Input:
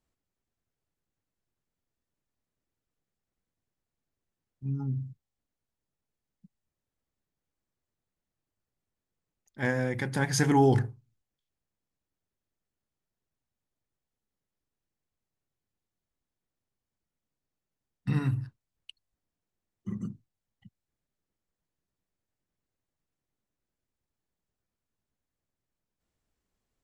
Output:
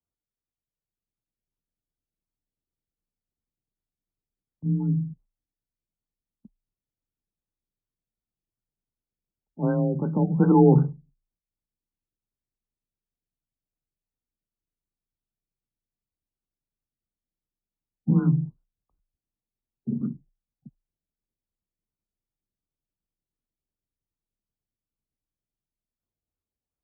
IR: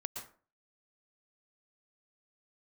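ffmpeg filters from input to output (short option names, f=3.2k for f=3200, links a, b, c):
-filter_complex "[0:a]agate=range=-13dB:threshold=-58dB:ratio=16:detection=peak,acrossover=split=380|1700[a][b][c];[a]dynaudnorm=f=100:g=21:m=6dB[d];[d][b][c]amix=inputs=3:normalize=0,afreqshift=28,afftfilt=real='re*lt(b*sr/1024,800*pow(1600/800,0.5+0.5*sin(2*PI*2.7*pts/sr)))':imag='im*lt(b*sr/1024,800*pow(1600/800,0.5+0.5*sin(2*PI*2.7*pts/sr)))':win_size=1024:overlap=0.75,volume=1.5dB"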